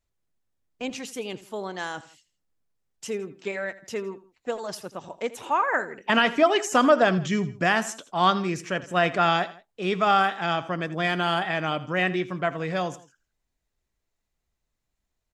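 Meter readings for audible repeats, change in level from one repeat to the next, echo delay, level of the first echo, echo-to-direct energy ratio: 2, −6.5 dB, 82 ms, −17.0 dB, −16.0 dB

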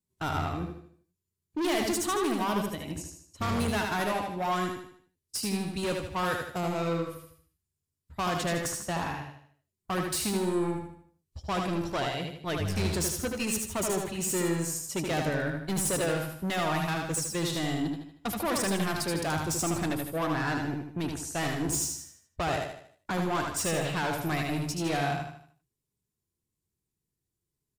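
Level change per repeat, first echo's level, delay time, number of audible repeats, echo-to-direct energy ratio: −7.5 dB, −4.5 dB, 77 ms, 5, −2.5 dB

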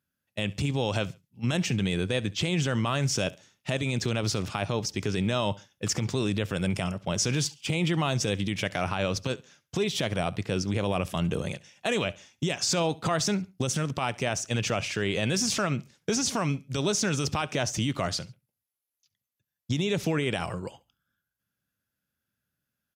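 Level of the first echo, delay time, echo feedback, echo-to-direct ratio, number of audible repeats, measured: −22.0 dB, 69 ms, 30%, −21.5 dB, 2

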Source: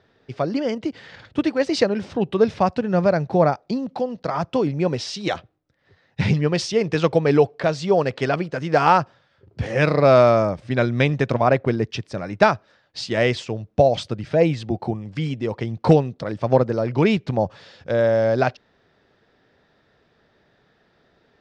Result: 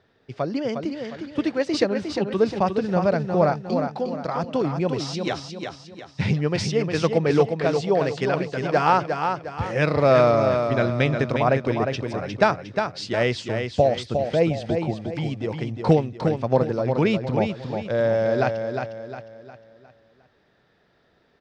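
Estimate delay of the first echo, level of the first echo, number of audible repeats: 357 ms, −6.0 dB, 4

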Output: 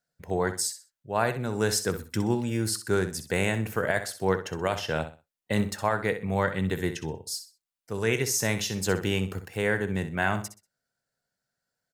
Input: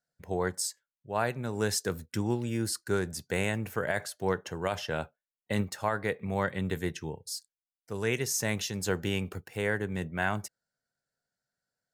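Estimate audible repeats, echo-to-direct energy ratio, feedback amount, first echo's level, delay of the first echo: 3, −10.5 dB, 27%, −11.0 dB, 63 ms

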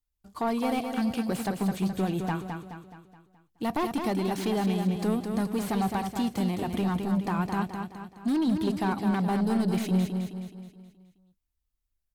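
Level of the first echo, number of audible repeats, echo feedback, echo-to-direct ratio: −6.0 dB, 5, 48%, −5.0 dB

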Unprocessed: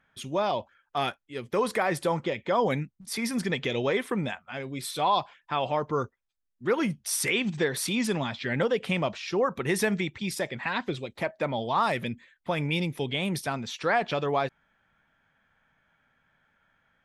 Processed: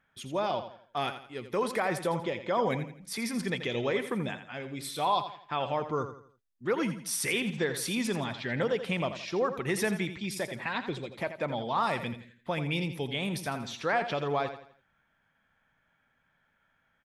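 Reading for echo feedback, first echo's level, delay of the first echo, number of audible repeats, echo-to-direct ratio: 37%, −10.5 dB, 84 ms, 3, −10.0 dB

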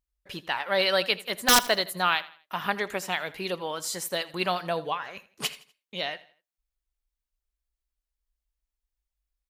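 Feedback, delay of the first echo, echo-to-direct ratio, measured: 36%, 82 ms, −18.0 dB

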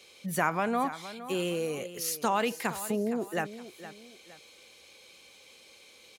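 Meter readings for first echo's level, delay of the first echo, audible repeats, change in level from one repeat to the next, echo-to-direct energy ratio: −14.0 dB, 465 ms, 2, −9.0 dB, −13.5 dB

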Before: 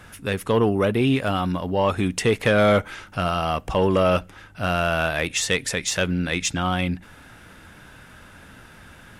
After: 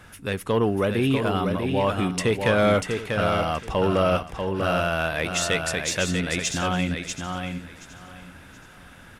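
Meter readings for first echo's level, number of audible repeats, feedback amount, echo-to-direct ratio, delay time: −5.5 dB, 6, repeats not evenly spaced, −5.0 dB, 641 ms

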